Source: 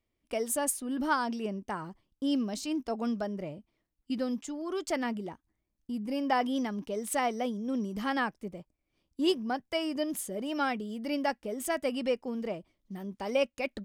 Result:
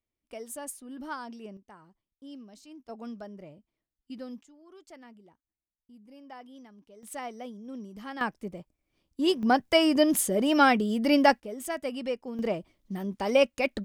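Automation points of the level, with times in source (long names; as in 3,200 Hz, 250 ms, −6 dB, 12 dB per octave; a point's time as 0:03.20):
−9 dB
from 0:01.57 −16 dB
from 0:02.89 −8.5 dB
from 0:04.43 −18.5 dB
from 0:07.03 −8.5 dB
from 0:08.21 +2 dB
from 0:09.43 +10 dB
from 0:11.40 −2 dB
from 0:12.39 +6 dB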